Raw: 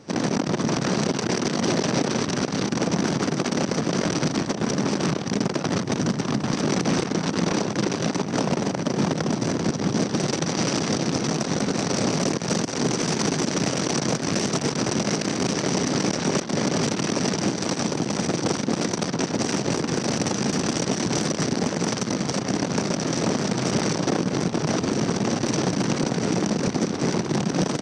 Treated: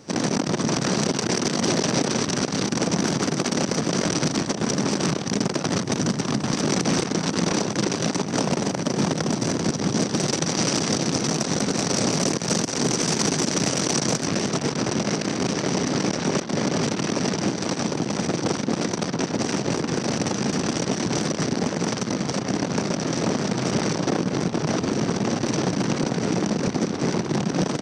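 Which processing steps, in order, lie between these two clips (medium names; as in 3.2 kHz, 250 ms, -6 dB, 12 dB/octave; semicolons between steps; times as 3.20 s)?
treble shelf 6.7 kHz +10 dB, from 14.27 s -3.5 dB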